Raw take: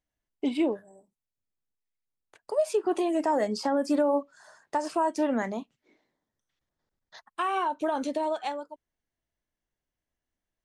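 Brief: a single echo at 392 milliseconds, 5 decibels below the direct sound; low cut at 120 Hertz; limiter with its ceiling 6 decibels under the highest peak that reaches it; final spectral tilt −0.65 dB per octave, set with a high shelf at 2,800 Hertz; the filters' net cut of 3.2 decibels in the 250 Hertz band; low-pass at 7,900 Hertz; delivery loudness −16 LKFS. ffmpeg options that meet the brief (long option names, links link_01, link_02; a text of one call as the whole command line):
ffmpeg -i in.wav -af "highpass=120,lowpass=7900,equalizer=frequency=250:width_type=o:gain=-4,highshelf=frequency=2800:gain=-6,alimiter=limit=-22dB:level=0:latency=1,aecho=1:1:392:0.562,volume=15.5dB" out.wav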